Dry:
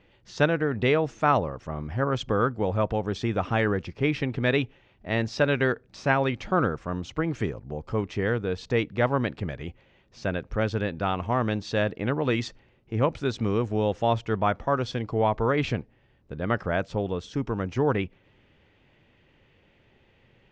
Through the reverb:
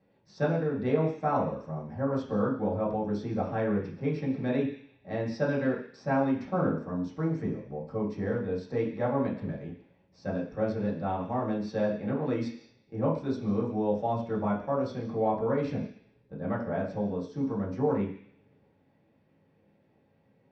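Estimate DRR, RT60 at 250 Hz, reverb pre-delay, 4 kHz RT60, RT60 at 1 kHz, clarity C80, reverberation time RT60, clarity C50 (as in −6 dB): −7.0 dB, 0.50 s, 3 ms, 0.85 s, 0.50 s, 10.0 dB, 0.50 s, 7.0 dB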